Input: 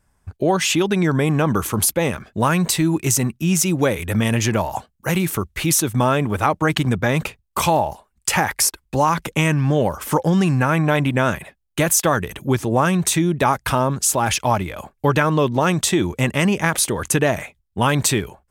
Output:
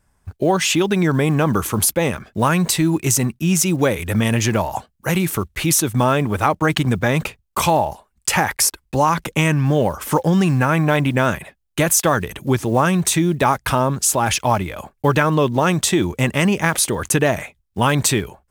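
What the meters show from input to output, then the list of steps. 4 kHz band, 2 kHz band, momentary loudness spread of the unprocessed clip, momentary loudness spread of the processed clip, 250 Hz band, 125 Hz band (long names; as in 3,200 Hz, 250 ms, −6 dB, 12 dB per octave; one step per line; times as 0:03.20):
+1.0 dB, +1.0 dB, 6 LU, 6 LU, +1.0 dB, +1.0 dB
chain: one scale factor per block 7 bits
level +1 dB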